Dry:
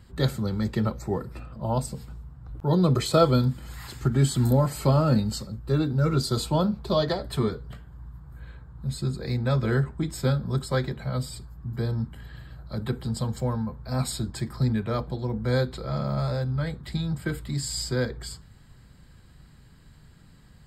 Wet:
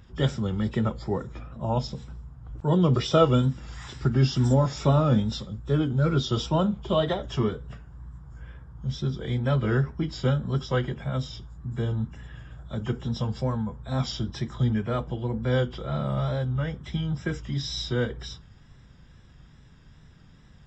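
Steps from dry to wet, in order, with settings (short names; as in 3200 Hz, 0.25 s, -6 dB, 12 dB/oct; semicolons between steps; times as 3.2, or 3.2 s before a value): nonlinear frequency compression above 2300 Hz 1.5:1; wow and flutter 55 cents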